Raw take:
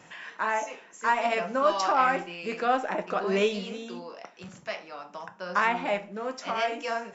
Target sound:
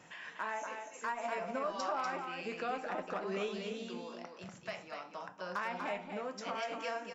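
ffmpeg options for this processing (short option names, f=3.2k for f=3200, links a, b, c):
-filter_complex "[0:a]asettb=1/sr,asplit=3[a][b][c];[a]atrim=end=1.124[d];[b]atrim=start=1.12:end=1.74,asetpts=PTS-STARTPTS,afade=t=in:d=0.004:c=qsin,afade=t=out:st=0.616:d=0.004:c=qsin,equalizer=f=3.2k:w=1.3:g=-5.5[e];[c]atrim=start=1.736[f];[d][e]acrossfade=d=0.004:c1=hsin:c2=qsin[g];[g][f]acrossfade=d=0.004:c1=qsin:c2=hsin,acompressor=threshold=-32dB:ratio=2.5,asoftclip=type=hard:threshold=-22dB,aecho=1:1:243:0.501,volume=-5.5dB"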